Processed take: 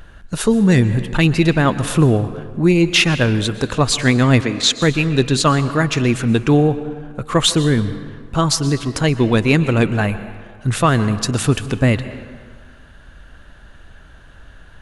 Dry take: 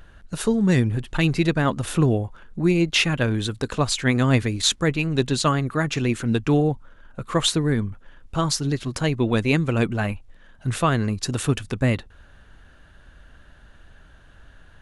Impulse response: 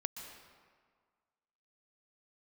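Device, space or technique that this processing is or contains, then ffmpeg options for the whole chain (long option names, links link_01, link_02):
saturated reverb return: -filter_complex "[0:a]asplit=2[link_01][link_02];[1:a]atrim=start_sample=2205[link_03];[link_02][link_03]afir=irnorm=-1:irlink=0,asoftclip=type=tanh:threshold=-13dB,volume=-2dB[link_04];[link_01][link_04]amix=inputs=2:normalize=0,asettb=1/sr,asplit=3[link_05][link_06][link_07];[link_05]atrim=end=4.414[link_08];[link_06]atrim=start=4.41:end=4.82,asetpts=PTS-STARTPTS,afade=type=in:duration=0.004:curve=qsin,afade=type=out:start_time=0.406:duration=0.004:curve=qsin,acrossover=split=160 8000:gain=0.178 1 0.0631[link_09][link_10][link_11];[link_09][link_10][link_11]amix=inputs=3:normalize=0[link_12];[link_07]atrim=start=4.816[link_13];[link_08][link_12]acrossfade=duration=0.004:curve1=hsin:curve2=qsin[link_14];[link_14][link_13]acrossfade=duration=0.004:curve1=qsin:curve2=hsin,volume=2dB"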